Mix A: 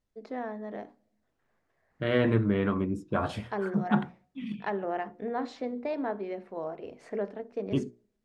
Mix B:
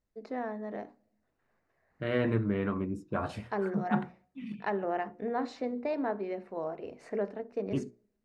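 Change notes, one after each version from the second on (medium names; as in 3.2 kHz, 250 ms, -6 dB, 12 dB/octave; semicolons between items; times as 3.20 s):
second voice -4.0 dB; master: add band-stop 3.3 kHz, Q 7.7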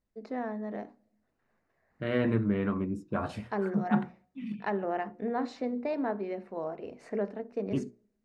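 master: add peaking EQ 220 Hz +4 dB 0.46 oct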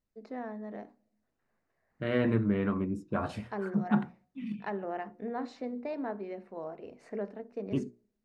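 first voice -4.5 dB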